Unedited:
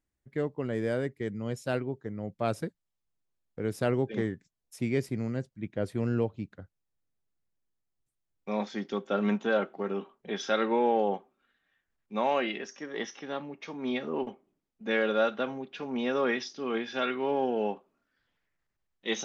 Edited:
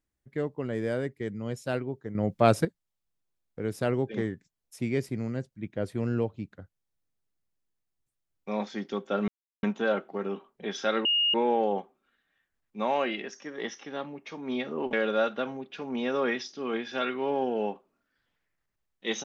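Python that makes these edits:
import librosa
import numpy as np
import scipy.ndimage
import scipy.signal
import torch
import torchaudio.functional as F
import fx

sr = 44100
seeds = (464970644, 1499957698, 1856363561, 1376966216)

y = fx.edit(x, sr, fx.clip_gain(start_s=2.15, length_s=0.5, db=9.0),
    fx.insert_silence(at_s=9.28, length_s=0.35),
    fx.insert_tone(at_s=10.7, length_s=0.29, hz=2850.0, db=-21.5),
    fx.cut(start_s=14.29, length_s=0.65), tone=tone)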